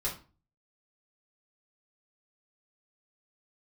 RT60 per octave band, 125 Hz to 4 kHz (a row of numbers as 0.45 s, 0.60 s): 0.55 s, 0.45 s, 0.35 s, 0.35 s, 0.30 s, 0.30 s